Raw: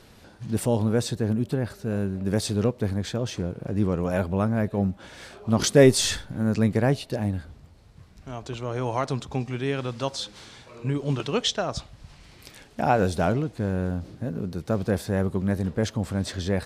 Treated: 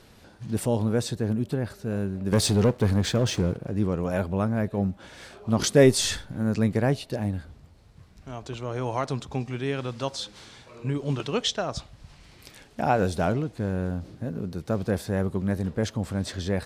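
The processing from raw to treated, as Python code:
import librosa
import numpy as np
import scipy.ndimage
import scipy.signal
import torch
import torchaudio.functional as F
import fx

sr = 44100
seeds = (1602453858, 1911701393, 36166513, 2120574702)

y = fx.leveller(x, sr, passes=2, at=(2.32, 3.57))
y = y * 10.0 ** (-1.5 / 20.0)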